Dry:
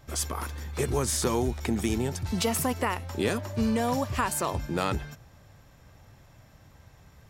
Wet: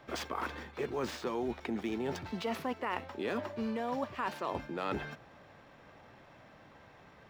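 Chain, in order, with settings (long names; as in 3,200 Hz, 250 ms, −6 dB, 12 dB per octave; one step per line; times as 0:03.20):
running median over 5 samples
three-way crossover with the lows and the highs turned down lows −19 dB, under 200 Hz, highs −13 dB, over 4,100 Hz
reversed playback
downward compressor 5 to 1, threshold −37 dBFS, peak gain reduction 14 dB
reversed playback
level +4 dB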